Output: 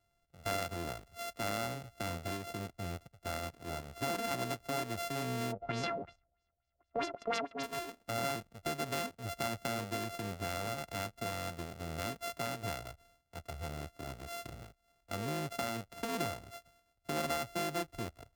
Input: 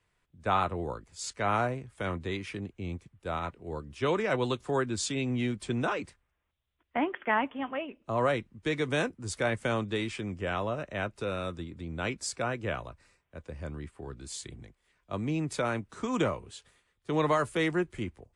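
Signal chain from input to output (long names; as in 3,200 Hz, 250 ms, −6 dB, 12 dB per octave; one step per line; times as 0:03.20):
samples sorted by size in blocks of 64 samples
0:05.51–0:07.62: auto-filter low-pass sine 2.1 Hz → 8.6 Hz 510–6,400 Hz
downward compressor 2 to 1, threshold −35 dBFS, peak gain reduction 9 dB
level −2 dB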